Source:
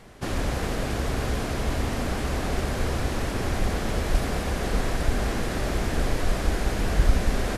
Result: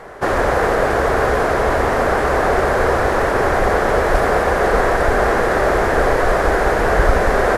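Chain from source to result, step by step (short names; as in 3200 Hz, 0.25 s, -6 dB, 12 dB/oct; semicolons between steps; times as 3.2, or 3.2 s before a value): band shelf 850 Hz +14 dB 2.7 oct; gain +3 dB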